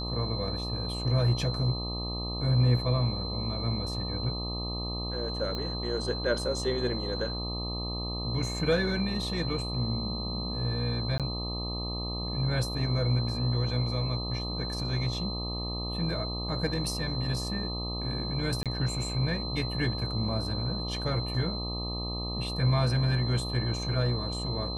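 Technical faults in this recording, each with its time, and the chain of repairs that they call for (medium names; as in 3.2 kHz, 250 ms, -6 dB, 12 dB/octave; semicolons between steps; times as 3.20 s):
buzz 60 Hz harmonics 21 -35 dBFS
whine 4.1 kHz -36 dBFS
5.55 s: pop -22 dBFS
11.18–11.20 s: dropout 17 ms
18.63–18.66 s: dropout 27 ms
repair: de-click; band-stop 4.1 kHz, Q 30; de-hum 60 Hz, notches 21; interpolate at 11.18 s, 17 ms; interpolate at 18.63 s, 27 ms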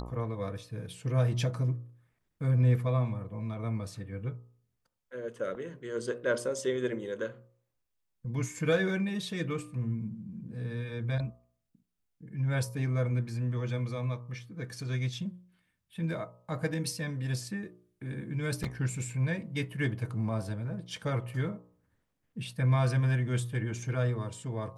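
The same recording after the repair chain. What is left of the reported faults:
nothing left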